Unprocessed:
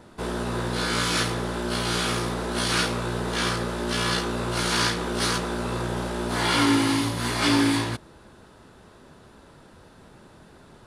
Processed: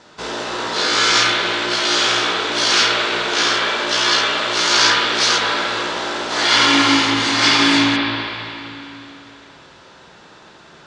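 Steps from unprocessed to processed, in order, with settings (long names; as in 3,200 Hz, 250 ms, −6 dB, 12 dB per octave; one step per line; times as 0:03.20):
Butterworth low-pass 6,700 Hz 36 dB per octave
spectral tilt +3.5 dB per octave
convolution reverb RT60 3.0 s, pre-delay 47 ms, DRR −3 dB
level +4 dB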